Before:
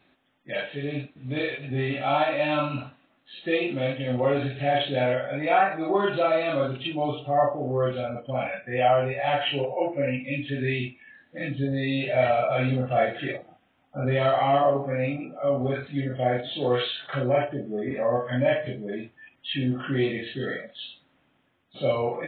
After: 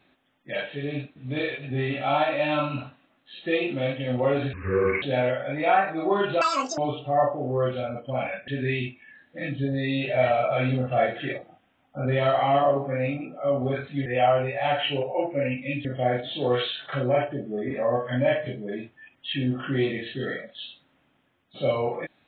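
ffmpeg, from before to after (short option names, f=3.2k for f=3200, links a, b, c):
-filter_complex "[0:a]asplit=8[a][b][c][d][e][f][g][h];[a]atrim=end=4.534[i];[b]atrim=start=4.53:end=4.86,asetpts=PTS-STARTPTS,asetrate=29547,aresample=44100[j];[c]atrim=start=4.856:end=6.254[k];[d]atrim=start=6.25:end=6.98,asetpts=PTS-STARTPTS,asetrate=88200,aresample=44100,atrim=end_sample=16096,asetpts=PTS-STARTPTS[l];[e]atrim=start=6.976:end=8.682[m];[f]atrim=start=10.468:end=16.052[n];[g]atrim=start=8.678:end=10.472[o];[h]atrim=start=16.048[p];[i][j]acrossfade=d=0.004:c1=hsin:c2=hsin[q];[q][k]acrossfade=d=0.004:c1=hsin:c2=hsin[r];[r][l]acrossfade=d=0.004:c1=hsin:c2=hsin[s];[s][m]acrossfade=d=0.004:c1=hsin:c2=hsin[t];[t][n]acrossfade=d=0.004:c1=hsin:c2=hsin[u];[u][o]acrossfade=d=0.004:c1=hsin:c2=hsin[v];[v][p]acrossfade=d=0.004:c1=hsin:c2=hsin"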